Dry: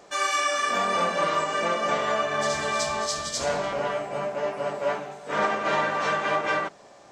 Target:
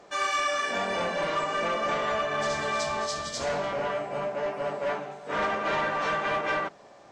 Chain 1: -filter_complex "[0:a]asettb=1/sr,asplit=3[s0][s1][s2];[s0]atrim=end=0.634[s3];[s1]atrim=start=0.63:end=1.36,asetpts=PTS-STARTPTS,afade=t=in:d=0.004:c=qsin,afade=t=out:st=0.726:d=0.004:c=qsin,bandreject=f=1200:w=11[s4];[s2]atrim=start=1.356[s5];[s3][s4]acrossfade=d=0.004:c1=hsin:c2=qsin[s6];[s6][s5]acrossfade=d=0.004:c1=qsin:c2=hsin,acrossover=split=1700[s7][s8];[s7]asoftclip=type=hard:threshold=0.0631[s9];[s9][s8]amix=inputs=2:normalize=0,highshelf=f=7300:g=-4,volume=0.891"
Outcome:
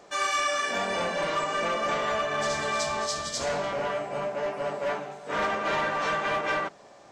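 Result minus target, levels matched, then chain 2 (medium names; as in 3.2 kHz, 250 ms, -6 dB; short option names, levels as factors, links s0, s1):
8 kHz band +3.5 dB
-filter_complex "[0:a]asettb=1/sr,asplit=3[s0][s1][s2];[s0]atrim=end=0.634[s3];[s1]atrim=start=0.63:end=1.36,asetpts=PTS-STARTPTS,afade=t=in:d=0.004:c=qsin,afade=t=out:st=0.726:d=0.004:c=qsin,bandreject=f=1200:w=11[s4];[s2]atrim=start=1.356[s5];[s3][s4]acrossfade=d=0.004:c1=hsin:c2=qsin[s6];[s6][s5]acrossfade=d=0.004:c1=qsin:c2=hsin,acrossover=split=1700[s7][s8];[s7]asoftclip=type=hard:threshold=0.0631[s9];[s9][s8]amix=inputs=2:normalize=0,highshelf=f=7300:g=-12.5,volume=0.891"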